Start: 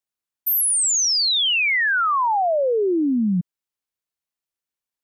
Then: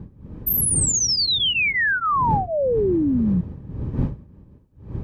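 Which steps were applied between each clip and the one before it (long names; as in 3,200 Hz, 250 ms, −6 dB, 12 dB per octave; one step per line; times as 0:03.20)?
wind on the microphone 120 Hz −27 dBFS
notch comb filter 700 Hz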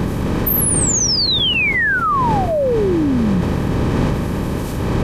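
compressor on every frequency bin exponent 0.6
envelope flattener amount 70%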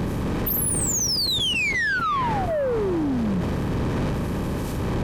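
soft clipping −16 dBFS, distortion −13 dB
level −3.5 dB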